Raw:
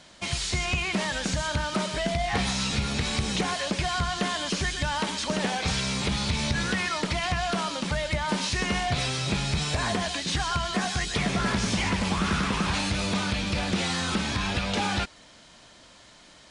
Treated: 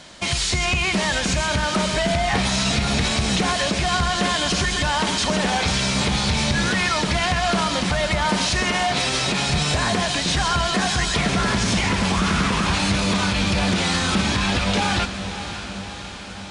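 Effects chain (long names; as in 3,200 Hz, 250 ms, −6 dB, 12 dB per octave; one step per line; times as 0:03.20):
0:08.63–0:09.50: high-pass filter 220 Hz 12 dB per octave
brickwall limiter −21 dBFS, peak gain reduction 6 dB
feedback delay with all-pass diffusion 589 ms, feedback 63%, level −10.5 dB
level +8.5 dB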